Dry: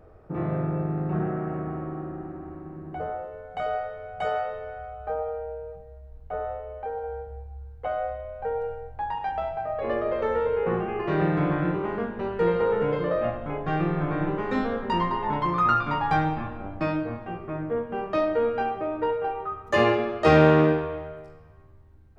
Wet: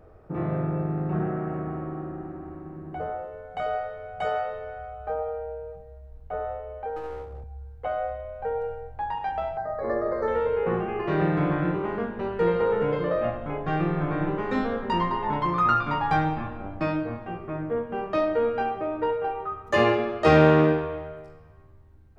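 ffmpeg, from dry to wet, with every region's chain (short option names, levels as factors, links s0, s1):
-filter_complex "[0:a]asettb=1/sr,asplit=3[s0][s1][s2];[s0]atrim=end=6.964[s3];[s1]atrim=start=6.96:end=7.44,asetpts=PTS-STARTPTS,afade=t=in:d=0.004:c=qsin,afade=t=out:st=0.476:d=0.004:c=qsin,highpass=f=78:w=0.5412,highpass=f=78:w=1.3066,lowshelf=f=190:g=7.5,aeval=exprs='clip(val(0),-1,0.0119)':c=same[s4];[s2]atrim=start=7.436[s5];[s3][s4]acrossfade=d=0.004:c1=hsin:c2=qsin[s6];[s6][s5]acrossfade=d=0.004:c1=qsin:c2=hsin,asettb=1/sr,asplit=3[s7][s8][s9];[s7]atrim=end=9.574[s10];[s8]atrim=start=9.57:end=10.28,asetpts=PTS-STARTPTS,afade=t=in:d=0.004:c=qsin,afade=t=out:st=0.706:d=0.004:c=qsin,asuperstop=centerf=2900:order=8:qfactor=1.4,asplit=2[s11][s12];[s12]adelay=49,volume=0.224[s13];[s11][s13]amix=inputs=2:normalize=0,atrim=end_sample=31311[s14];[s9]atrim=start=10.276[s15];[s10][s14]acrossfade=d=0.004:c1=hsin:c2=qsin[s16];[s16][s15]acrossfade=d=0.004:c1=qsin:c2=hsin"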